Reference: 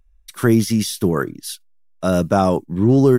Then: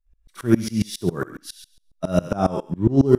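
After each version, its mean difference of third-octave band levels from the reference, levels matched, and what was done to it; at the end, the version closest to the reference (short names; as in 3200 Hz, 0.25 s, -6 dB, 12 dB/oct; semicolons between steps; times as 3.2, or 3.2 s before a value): 6.0 dB: high shelf 12000 Hz -11 dB; on a send: thinning echo 67 ms, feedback 36%, high-pass 600 Hz, level -4 dB; on the sum: harmonic-percussive split percussive -9 dB; dB-ramp tremolo swelling 7.3 Hz, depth 25 dB; gain +4 dB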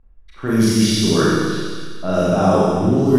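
11.5 dB: low-pass opened by the level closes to 1500 Hz, open at -9 dBFS; reverse; compressor 5:1, threshold -22 dBFS, peak gain reduction 12 dB; reverse; thin delay 91 ms, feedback 68%, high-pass 2600 Hz, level -5 dB; Schroeder reverb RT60 1.7 s, combs from 28 ms, DRR -8 dB; gain +2.5 dB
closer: first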